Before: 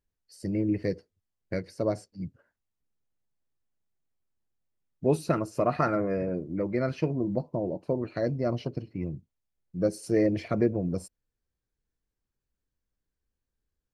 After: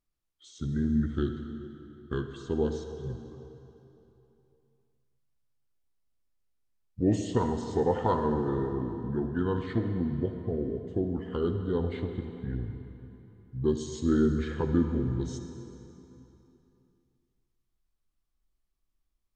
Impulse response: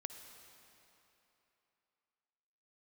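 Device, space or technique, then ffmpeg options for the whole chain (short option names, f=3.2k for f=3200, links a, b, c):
slowed and reverbed: -filter_complex "[0:a]asubboost=boost=2:cutoff=87,asetrate=31752,aresample=44100[a];[1:a]atrim=start_sample=2205[b];[a][b]afir=irnorm=-1:irlink=0,volume=3dB"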